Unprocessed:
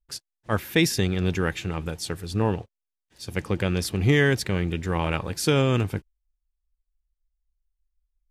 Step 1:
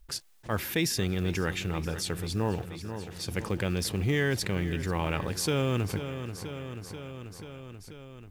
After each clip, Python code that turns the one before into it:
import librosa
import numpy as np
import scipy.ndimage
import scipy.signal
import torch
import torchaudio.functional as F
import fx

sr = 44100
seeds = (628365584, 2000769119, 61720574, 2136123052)

y = fx.quant_float(x, sr, bits=4)
y = fx.echo_feedback(y, sr, ms=486, feedback_pct=54, wet_db=-18)
y = fx.env_flatten(y, sr, amount_pct=50)
y = F.gain(torch.from_numpy(y), -8.5).numpy()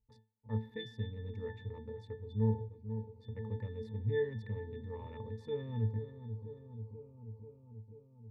y = fx.wiener(x, sr, points=25)
y = fx.octave_resonator(y, sr, note='A', decay_s=0.28)
y = F.gain(torch.from_numpy(y), 3.0).numpy()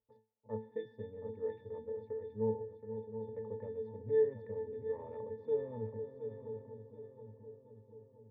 y = fx.bandpass_q(x, sr, hz=560.0, q=2.3)
y = fx.air_absorb(y, sr, metres=160.0)
y = fx.echo_feedback(y, sr, ms=724, feedback_pct=38, wet_db=-9)
y = F.gain(torch.from_numpy(y), 8.5).numpy()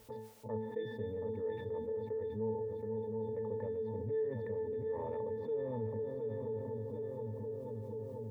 y = fx.env_flatten(x, sr, amount_pct=70)
y = F.gain(torch.from_numpy(y), -7.5).numpy()